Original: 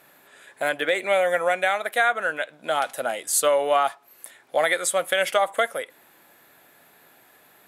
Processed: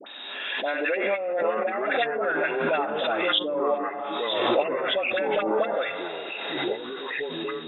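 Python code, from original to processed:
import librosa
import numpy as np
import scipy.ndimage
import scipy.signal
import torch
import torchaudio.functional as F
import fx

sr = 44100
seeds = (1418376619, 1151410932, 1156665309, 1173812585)

y = fx.freq_compress(x, sr, knee_hz=2500.0, ratio=4.0)
y = scipy.signal.sosfilt(scipy.signal.cheby1(6, 3, 200.0, 'highpass', fs=sr, output='sos'), y)
y = fx.rev_plate(y, sr, seeds[0], rt60_s=2.5, hf_ratio=0.8, predelay_ms=0, drr_db=13.0)
y = fx.env_lowpass_down(y, sr, base_hz=340.0, full_db=-17.5)
y = fx.rider(y, sr, range_db=4, speed_s=0.5)
y = fx.peak_eq(y, sr, hz=3100.0, db=7.5, octaves=1.5)
y = fx.dispersion(y, sr, late='highs', ms=68.0, hz=1000.0)
y = fx.echo_pitch(y, sr, ms=584, semitones=-5, count=2, db_per_echo=-6.0)
y = fx.pre_swell(y, sr, db_per_s=29.0)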